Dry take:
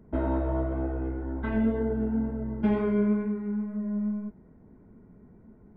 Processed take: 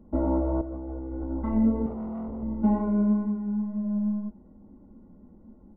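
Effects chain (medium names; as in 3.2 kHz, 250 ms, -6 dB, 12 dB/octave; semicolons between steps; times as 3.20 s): comb 3.6 ms, depth 73%; 0.61–1.31 s: compressor with a negative ratio -34 dBFS, ratio -1; 1.86–2.43 s: hard clipper -33 dBFS, distortion -12 dB; Savitzky-Golay filter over 65 samples; reverberation, pre-delay 3 ms, DRR 14.5 dB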